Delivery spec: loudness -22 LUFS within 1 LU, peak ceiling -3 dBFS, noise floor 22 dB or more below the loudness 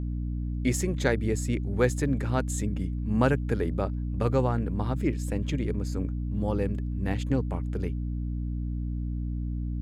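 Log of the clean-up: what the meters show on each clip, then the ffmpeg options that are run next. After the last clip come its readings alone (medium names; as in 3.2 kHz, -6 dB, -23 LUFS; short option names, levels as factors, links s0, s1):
hum 60 Hz; highest harmonic 300 Hz; hum level -28 dBFS; loudness -29.0 LUFS; peak level -10.5 dBFS; loudness target -22.0 LUFS
-> -af "bandreject=f=60:t=h:w=6,bandreject=f=120:t=h:w=6,bandreject=f=180:t=h:w=6,bandreject=f=240:t=h:w=6,bandreject=f=300:t=h:w=6"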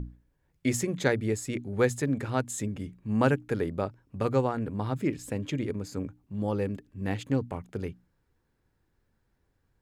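hum not found; loudness -30.5 LUFS; peak level -10.5 dBFS; loudness target -22.0 LUFS
-> -af "volume=2.66,alimiter=limit=0.708:level=0:latency=1"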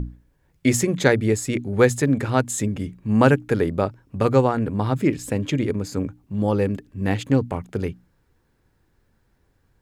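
loudness -22.0 LUFS; peak level -3.0 dBFS; noise floor -65 dBFS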